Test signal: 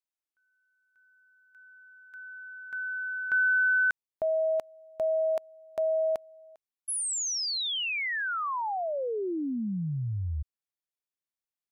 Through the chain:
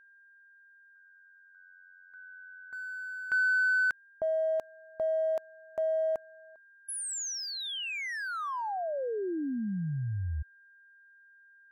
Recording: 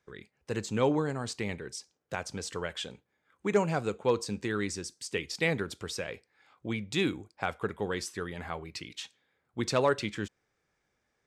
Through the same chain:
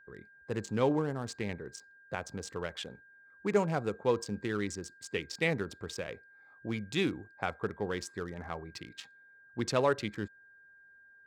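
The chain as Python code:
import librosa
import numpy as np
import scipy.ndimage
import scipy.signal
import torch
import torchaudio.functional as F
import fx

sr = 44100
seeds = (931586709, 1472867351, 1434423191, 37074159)

y = fx.wiener(x, sr, points=15)
y = y + 10.0 ** (-55.0 / 20.0) * np.sin(2.0 * np.pi * 1600.0 * np.arange(len(y)) / sr)
y = y * 10.0 ** (-1.5 / 20.0)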